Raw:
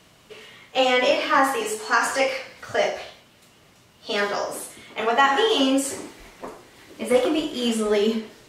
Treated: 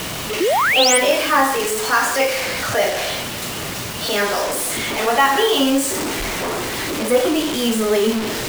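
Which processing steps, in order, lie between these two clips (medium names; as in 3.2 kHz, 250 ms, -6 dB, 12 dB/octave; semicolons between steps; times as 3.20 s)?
jump at every zero crossing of -24 dBFS; painted sound rise, 0.40–0.98 s, 310–10000 Hz -18 dBFS; bit crusher 5-bit; trim +1.5 dB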